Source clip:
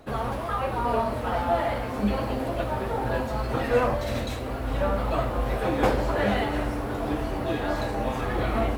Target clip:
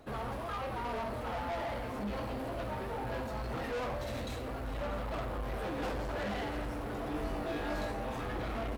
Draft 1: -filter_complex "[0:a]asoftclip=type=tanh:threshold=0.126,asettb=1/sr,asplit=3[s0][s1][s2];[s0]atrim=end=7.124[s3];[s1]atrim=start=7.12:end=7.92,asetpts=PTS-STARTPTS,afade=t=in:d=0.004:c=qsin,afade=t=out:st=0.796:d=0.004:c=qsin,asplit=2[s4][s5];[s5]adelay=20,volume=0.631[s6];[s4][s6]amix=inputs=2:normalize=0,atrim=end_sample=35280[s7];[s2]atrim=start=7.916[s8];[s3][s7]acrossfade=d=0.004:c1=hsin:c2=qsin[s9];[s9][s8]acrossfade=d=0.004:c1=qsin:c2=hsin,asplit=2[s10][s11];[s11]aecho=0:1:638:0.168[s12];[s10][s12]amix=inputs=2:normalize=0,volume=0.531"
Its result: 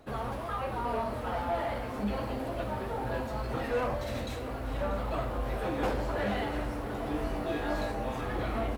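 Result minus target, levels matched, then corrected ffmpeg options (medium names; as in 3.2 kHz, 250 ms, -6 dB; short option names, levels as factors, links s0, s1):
saturation: distortion -9 dB
-filter_complex "[0:a]asoftclip=type=tanh:threshold=0.0398,asettb=1/sr,asplit=3[s0][s1][s2];[s0]atrim=end=7.124[s3];[s1]atrim=start=7.12:end=7.92,asetpts=PTS-STARTPTS,afade=t=in:d=0.004:c=qsin,afade=t=out:st=0.796:d=0.004:c=qsin,asplit=2[s4][s5];[s5]adelay=20,volume=0.631[s6];[s4][s6]amix=inputs=2:normalize=0,atrim=end_sample=35280[s7];[s2]atrim=start=7.916[s8];[s3][s7]acrossfade=d=0.004:c1=hsin:c2=qsin[s9];[s9][s8]acrossfade=d=0.004:c1=qsin:c2=hsin,asplit=2[s10][s11];[s11]aecho=0:1:638:0.168[s12];[s10][s12]amix=inputs=2:normalize=0,volume=0.531"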